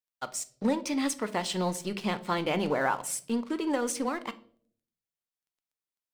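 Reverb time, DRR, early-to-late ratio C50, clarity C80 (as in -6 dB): 0.55 s, 11.0 dB, 17.5 dB, 21.5 dB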